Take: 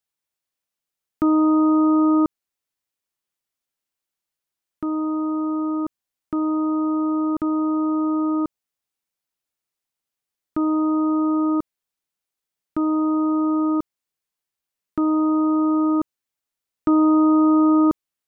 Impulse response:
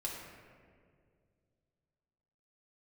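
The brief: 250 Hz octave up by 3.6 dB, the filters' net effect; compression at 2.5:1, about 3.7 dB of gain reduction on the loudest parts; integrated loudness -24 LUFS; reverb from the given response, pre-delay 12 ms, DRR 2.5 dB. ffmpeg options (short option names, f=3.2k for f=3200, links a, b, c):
-filter_complex "[0:a]equalizer=f=250:t=o:g=5,acompressor=threshold=-17dB:ratio=2.5,asplit=2[a][b];[1:a]atrim=start_sample=2205,adelay=12[c];[b][c]afir=irnorm=-1:irlink=0,volume=-3.5dB[d];[a][d]amix=inputs=2:normalize=0,volume=-7.5dB"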